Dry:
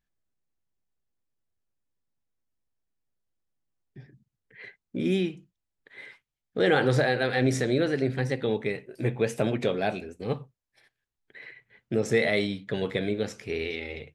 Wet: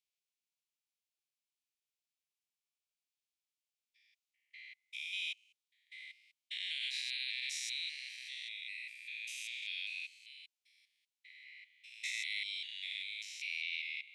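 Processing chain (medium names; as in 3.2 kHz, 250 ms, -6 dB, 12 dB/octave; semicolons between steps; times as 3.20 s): spectrogram pixelated in time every 200 ms; steep high-pass 2.2 kHz 72 dB/octave; treble shelf 10 kHz -10 dB; peak limiter -32.5 dBFS, peak gain reduction 9 dB; trim +4.5 dB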